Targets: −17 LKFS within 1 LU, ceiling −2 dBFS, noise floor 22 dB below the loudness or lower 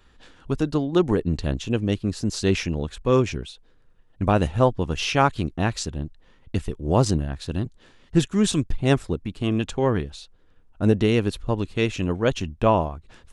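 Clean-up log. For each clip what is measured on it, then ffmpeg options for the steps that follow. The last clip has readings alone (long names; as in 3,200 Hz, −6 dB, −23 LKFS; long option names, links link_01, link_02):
integrated loudness −24.0 LKFS; sample peak −4.5 dBFS; target loudness −17.0 LKFS
→ -af "volume=7dB,alimiter=limit=-2dB:level=0:latency=1"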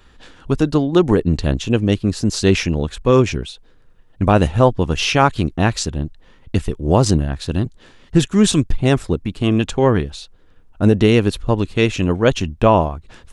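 integrated loudness −17.5 LKFS; sample peak −2.0 dBFS; background noise floor −49 dBFS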